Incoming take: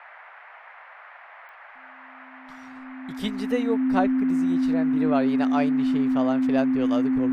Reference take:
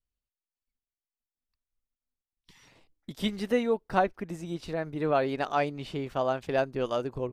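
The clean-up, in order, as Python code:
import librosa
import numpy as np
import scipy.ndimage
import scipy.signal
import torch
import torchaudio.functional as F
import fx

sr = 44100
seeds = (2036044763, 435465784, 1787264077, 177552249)

y = fx.fix_declick_ar(x, sr, threshold=10.0)
y = fx.notch(y, sr, hz=260.0, q=30.0)
y = fx.noise_reduce(y, sr, print_start_s=0.27, print_end_s=0.77, reduce_db=30.0)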